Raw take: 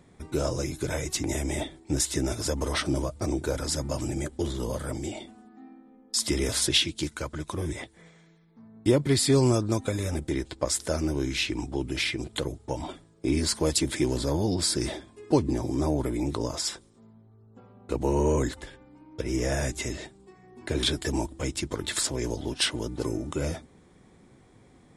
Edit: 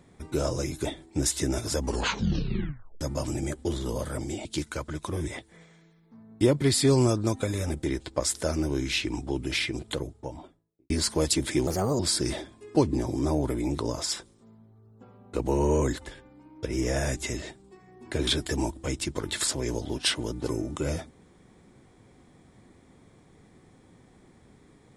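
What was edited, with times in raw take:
0.85–1.59 s: delete
2.52 s: tape stop 1.23 s
5.19–6.90 s: delete
12.18–13.35 s: studio fade out
14.12–14.55 s: speed 133%

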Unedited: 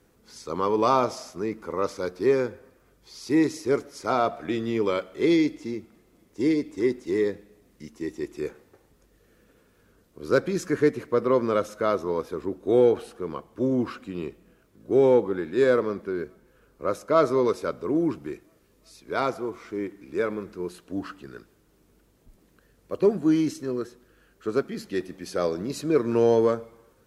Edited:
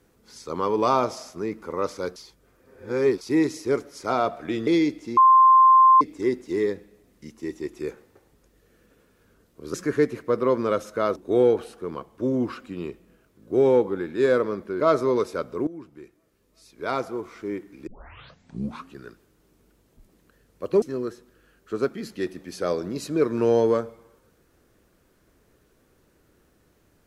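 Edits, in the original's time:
2.16–3.21 s: reverse
4.67–5.25 s: delete
5.75–6.59 s: bleep 1.05 kHz -10.5 dBFS
10.32–10.58 s: delete
12.00–12.54 s: delete
16.18–17.09 s: delete
17.96–19.44 s: fade in, from -18 dB
20.16 s: tape start 1.08 s
23.11–23.56 s: delete

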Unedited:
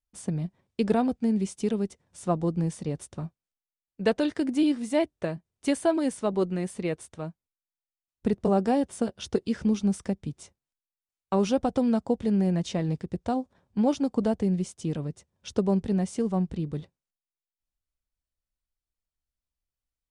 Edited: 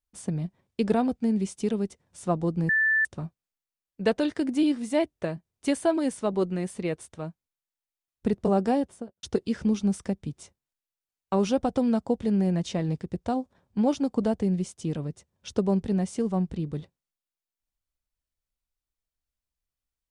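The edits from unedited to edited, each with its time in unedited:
2.69–3.05 s: bleep 1.76 kHz -19.5 dBFS
8.69–9.23 s: studio fade out

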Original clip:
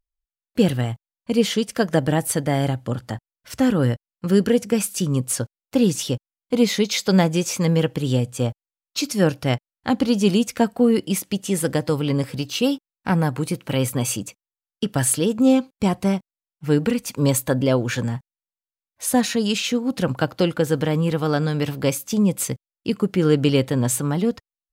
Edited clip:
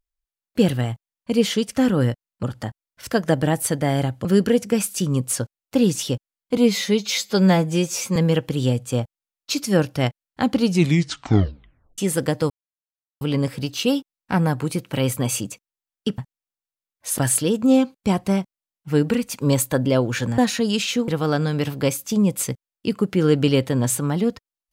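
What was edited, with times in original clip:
1.76–2.90 s: swap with 3.58–4.25 s
6.57–7.63 s: stretch 1.5×
10.07 s: tape stop 1.38 s
11.97 s: insert silence 0.71 s
18.14–19.14 s: move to 14.94 s
19.84–21.09 s: delete

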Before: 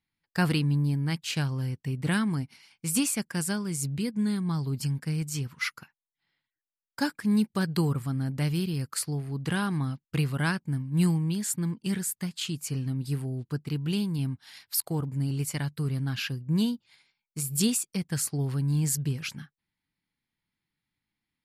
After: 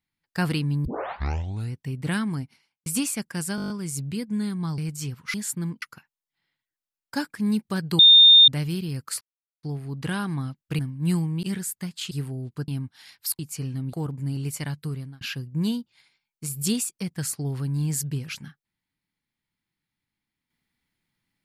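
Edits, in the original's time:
0.85 s: tape start 0.89 s
2.37–2.86 s: studio fade out
3.56 s: stutter 0.02 s, 8 plays
4.64–5.11 s: delete
7.84–8.33 s: bleep 3.64 kHz -8.5 dBFS
9.06 s: insert silence 0.42 s
10.22–10.71 s: delete
11.35–11.83 s: move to 5.67 s
12.51–13.05 s: move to 14.87 s
13.62–14.16 s: delete
15.79–16.15 s: fade out

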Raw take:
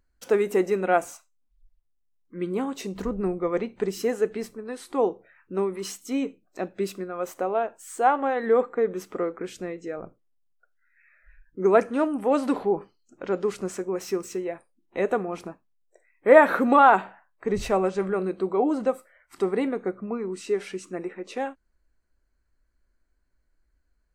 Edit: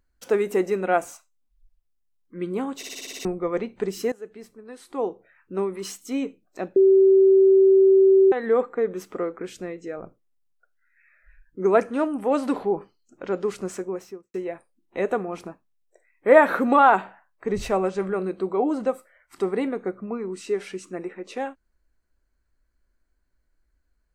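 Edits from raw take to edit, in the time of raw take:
2.77 s: stutter in place 0.06 s, 8 plays
4.12–5.59 s: fade in, from -17.5 dB
6.76–8.32 s: bleep 385 Hz -11.5 dBFS
13.78–14.34 s: studio fade out

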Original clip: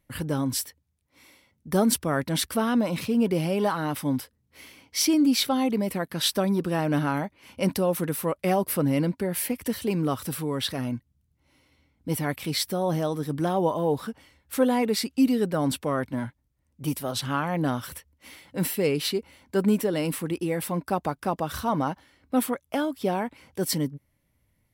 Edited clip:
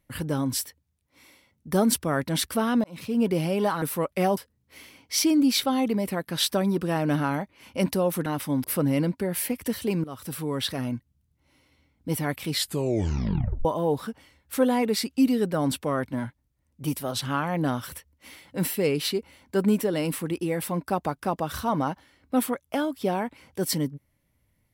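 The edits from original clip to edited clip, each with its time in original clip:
2.84–3.23 s: fade in
3.82–4.20 s: swap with 8.09–8.64 s
10.04–10.61 s: fade in equal-power, from -20 dB
12.53 s: tape stop 1.12 s

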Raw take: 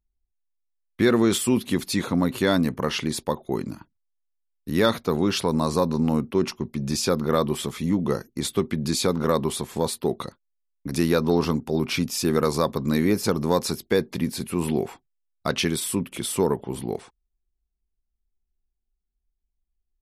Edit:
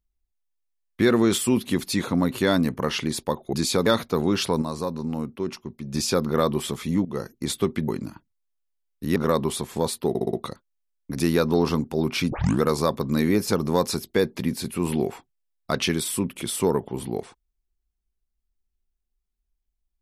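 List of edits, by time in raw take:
3.53–4.81 s: swap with 8.83–9.16 s
5.57–6.89 s: gain -6.5 dB
8.00–8.26 s: fade in, from -15 dB
10.09 s: stutter 0.06 s, 5 plays
12.07 s: tape start 0.30 s

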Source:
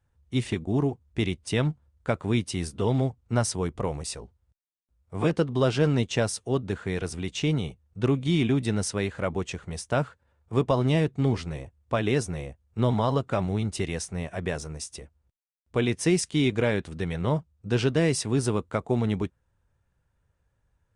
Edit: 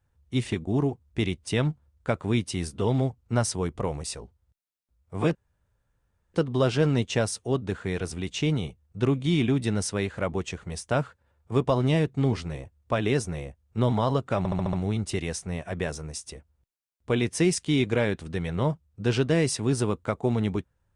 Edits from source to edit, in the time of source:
5.35 s: insert room tone 0.99 s
13.39 s: stutter 0.07 s, 6 plays

